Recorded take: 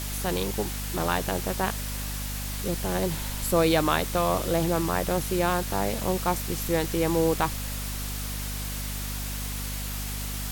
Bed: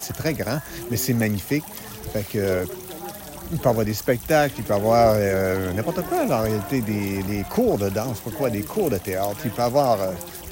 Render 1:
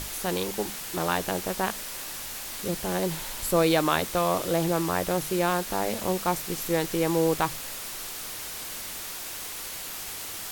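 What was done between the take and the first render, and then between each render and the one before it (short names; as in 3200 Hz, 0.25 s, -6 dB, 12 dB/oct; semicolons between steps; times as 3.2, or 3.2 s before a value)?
notches 50/100/150/200/250 Hz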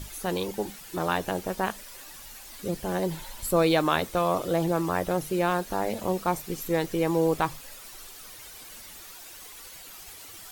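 denoiser 11 dB, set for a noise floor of -37 dBFS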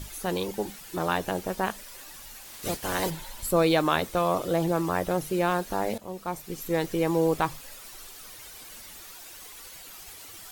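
2.44–3.09 spectral limiter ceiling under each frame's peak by 18 dB; 5.98–6.83 fade in, from -14.5 dB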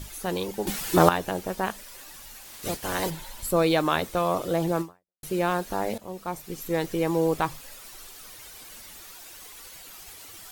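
0.67–1.09 gain +12 dB; 4.81–5.23 fade out exponential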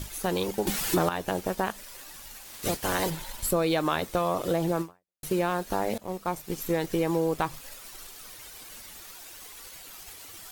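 sample leveller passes 1; compressor 4:1, threshold -23 dBFS, peak gain reduction 11.5 dB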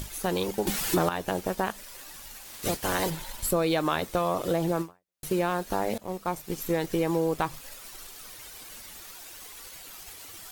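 upward compressor, threshold -40 dBFS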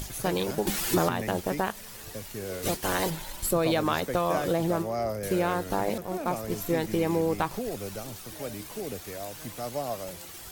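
add bed -14 dB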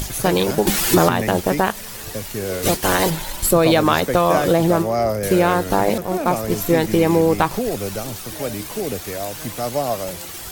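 gain +10.5 dB; limiter -3 dBFS, peak gain reduction 1.5 dB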